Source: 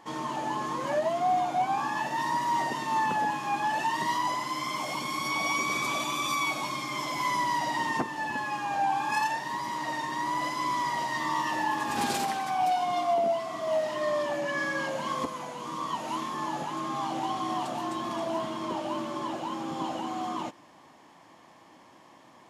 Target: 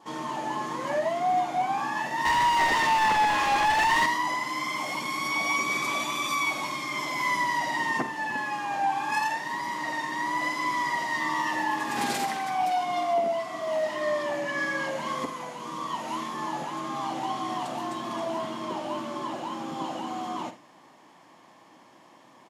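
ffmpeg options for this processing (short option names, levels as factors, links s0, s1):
-filter_complex "[0:a]highpass=120,asettb=1/sr,asplit=3[s0][s1][s2];[s0]atrim=end=2.254[s3];[s1]atrim=start=2.25:end=4.06,asetpts=PTS-STARTPTS,afade=t=in:d=0.004:c=qsin,afade=t=out:st=1.806:d=0.004:c=qsin,asplit=2[s4][s5];[s5]highpass=f=720:p=1,volume=15.8,asoftclip=type=tanh:threshold=0.126[s6];[s4][s6]amix=inputs=2:normalize=0,lowpass=f=4600:p=1,volume=0.501[s7];[s2]atrim=start=4.056[s8];[s3][s7]acrossfade=d=0.004:c1=hsin:c2=qsin[s9];[s9][s8]acrossfade=d=0.004:c1=qsin:c2=hsin,aecho=1:1:48|78:0.251|0.158,adynamicequalizer=threshold=0.00355:dfrequency=2000:dqfactor=5.4:tfrequency=2000:tqfactor=5.4:attack=5:release=100:ratio=0.375:range=3.5:mode=boostabove:tftype=bell"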